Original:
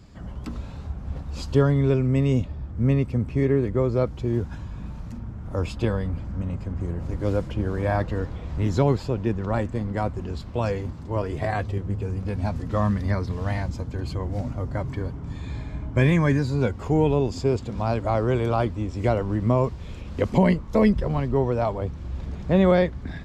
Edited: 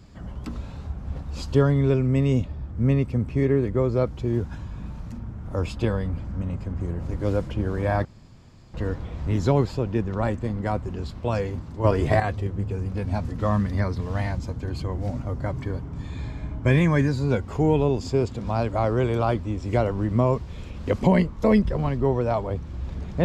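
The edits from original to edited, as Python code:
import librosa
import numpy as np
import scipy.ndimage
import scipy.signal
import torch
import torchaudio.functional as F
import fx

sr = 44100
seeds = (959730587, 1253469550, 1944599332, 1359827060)

y = fx.edit(x, sr, fx.insert_room_tone(at_s=8.05, length_s=0.69),
    fx.clip_gain(start_s=11.15, length_s=0.36, db=6.5), tone=tone)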